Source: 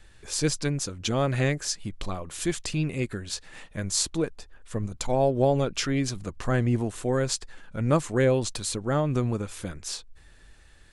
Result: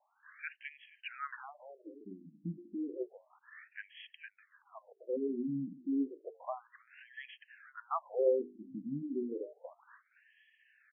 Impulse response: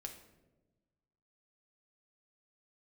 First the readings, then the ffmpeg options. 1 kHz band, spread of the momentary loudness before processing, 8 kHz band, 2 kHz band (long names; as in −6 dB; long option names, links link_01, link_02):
−11.5 dB, 12 LU, below −40 dB, −12.5 dB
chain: -af "bandreject=frequency=50:width_type=h:width=6,bandreject=frequency=100:width_type=h:width=6,bandreject=frequency=150:width_type=h:width=6,bandreject=frequency=200:width_type=h:width=6,bandreject=frequency=250:width_type=h:width=6,bandreject=frequency=300:width_type=h:width=6,bandreject=frequency=350:width_type=h:width=6,bandreject=frequency=400:width_type=h:width=6,bandreject=frequency=450:width_type=h:width=6,aecho=1:1:473:0.106,afftfilt=real='re*between(b*sr/1024,230*pow(2400/230,0.5+0.5*sin(2*PI*0.31*pts/sr))/1.41,230*pow(2400/230,0.5+0.5*sin(2*PI*0.31*pts/sr))*1.41)':imag='im*between(b*sr/1024,230*pow(2400/230,0.5+0.5*sin(2*PI*0.31*pts/sr))/1.41,230*pow(2400/230,0.5+0.5*sin(2*PI*0.31*pts/sr))*1.41)':win_size=1024:overlap=0.75,volume=-4.5dB"